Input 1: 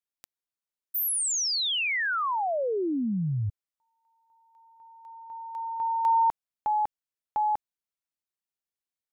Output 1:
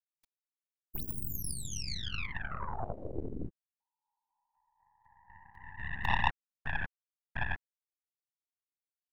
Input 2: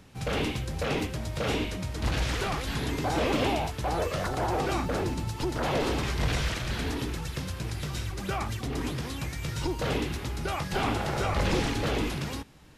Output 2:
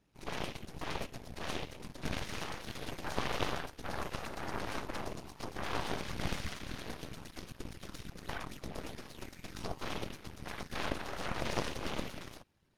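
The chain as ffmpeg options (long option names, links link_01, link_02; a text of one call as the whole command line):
ffmpeg -i in.wav -af "afftfilt=real='hypot(re,im)*cos(2*PI*random(0))':imag='hypot(re,im)*sin(2*PI*random(1))':win_size=512:overlap=0.75,aeval=exprs='0.133*(cos(1*acos(clip(val(0)/0.133,-1,1)))-cos(1*PI/2))+0.0473*(cos(3*acos(clip(val(0)/0.133,-1,1)))-cos(3*PI/2))+0.0237*(cos(4*acos(clip(val(0)/0.133,-1,1)))-cos(4*PI/2))+0.00119*(cos(7*acos(clip(val(0)/0.133,-1,1)))-cos(7*PI/2))+0.00266*(cos(8*acos(clip(val(0)/0.133,-1,1)))-cos(8*PI/2))':channel_layout=same,bandreject=frequency=7600:width=9.4,volume=4dB" out.wav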